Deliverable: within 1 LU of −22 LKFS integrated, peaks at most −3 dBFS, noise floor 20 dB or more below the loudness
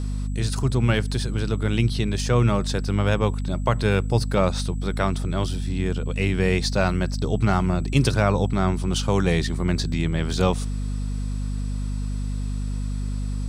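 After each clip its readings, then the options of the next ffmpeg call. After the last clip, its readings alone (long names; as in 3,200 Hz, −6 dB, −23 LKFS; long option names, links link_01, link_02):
mains hum 50 Hz; hum harmonics up to 250 Hz; level of the hum −24 dBFS; interfering tone 7,800 Hz; level of the tone −52 dBFS; integrated loudness −24.0 LKFS; sample peak −5.0 dBFS; target loudness −22.0 LKFS
→ -af "bandreject=frequency=50:width_type=h:width=4,bandreject=frequency=100:width_type=h:width=4,bandreject=frequency=150:width_type=h:width=4,bandreject=frequency=200:width_type=h:width=4,bandreject=frequency=250:width_type=h:width=4"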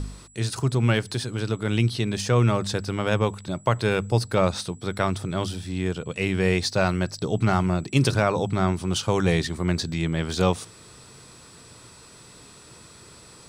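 mains hum none found; interfering tone 7,800 Hz; level of the tone −52 dBFS
→ -af "bandreject=frequency=7800:width=30"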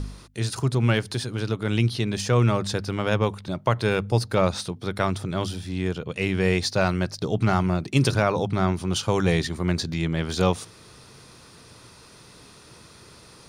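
interfering tone none found; integrated loudness −24.5 LKFS; sample peak −6.5 dBFS; target loudness −22.0 LKFS
→ -af "volume=2.5dB"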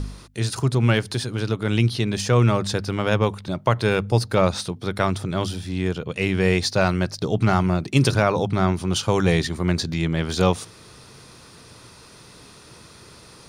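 integrated loudness −22.0 LKFS; sample peak −4.0 dBFS; background noise floor −47 dBFS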